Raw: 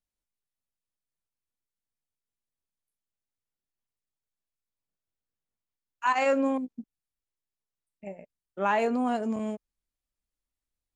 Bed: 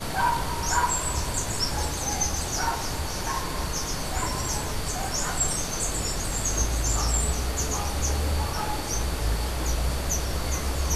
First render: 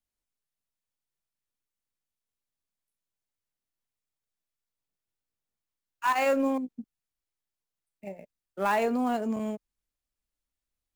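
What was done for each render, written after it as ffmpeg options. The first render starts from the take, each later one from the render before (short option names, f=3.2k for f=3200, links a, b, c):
-filter_complex "[0:a]acrossover=split=220|1200[a][b][c];[c]acrusher=bits=2:mode=log:mix=0:aa=0.000001[d];[a][b][d]amix=inputs=3:normalize=0,asoftclip=type=tanh:threshold=-13dB"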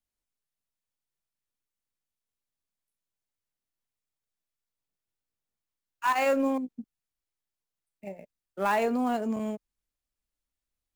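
-af anull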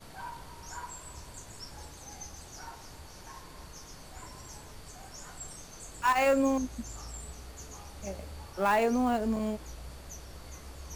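-filter_complex "[1:a]volume=-18.5dB[a];[0:a][a]amix=inputs=2:normalize=0"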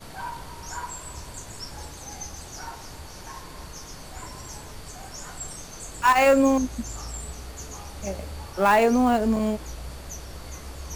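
-af "volume=7.5dB"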